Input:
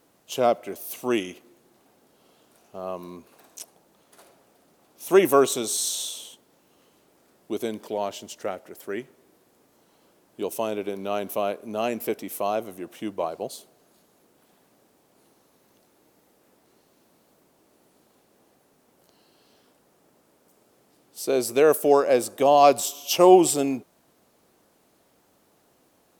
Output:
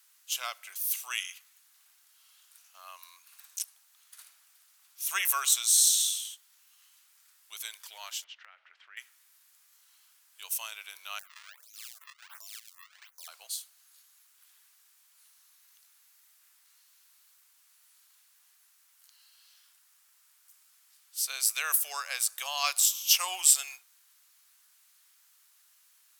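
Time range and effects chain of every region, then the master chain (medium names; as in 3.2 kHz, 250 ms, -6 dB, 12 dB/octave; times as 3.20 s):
8.24–8.97 s: low-pass 3.1 kHz 24 dB/octave + compression 12:1, threshold -36 dBFS
11.19–13.28 s: decimation with a swept rate 33×, swing 160% 1.4 Hz + compression 4:1, threshold -37 dBFS + lamp-driven phase shifter 1.3 Hz
whole clip: high-pass 1.3 kHz 24 dB/octave; treble shelf 3.2 kHz +10 dB; trim -3.5 dB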